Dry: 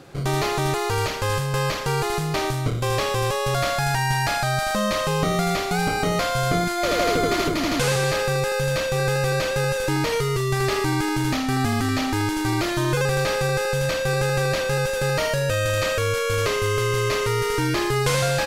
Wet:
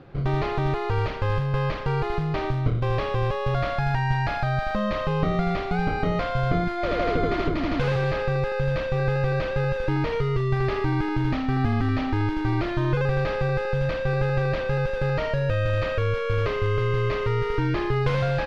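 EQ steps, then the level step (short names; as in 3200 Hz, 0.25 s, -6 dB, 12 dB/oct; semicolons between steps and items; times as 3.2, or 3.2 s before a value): air absorption 320 m; low shelf 91 Hz +10 dB; -2.5 dB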